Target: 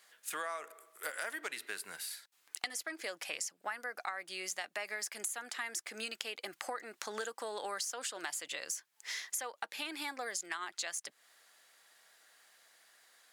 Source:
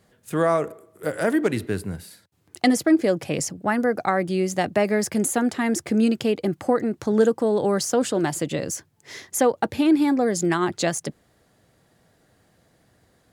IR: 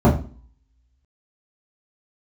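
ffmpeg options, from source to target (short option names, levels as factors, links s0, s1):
-af "highpass=1400,acompressor=threshold=0.00891:ratio=6,volume=1.58"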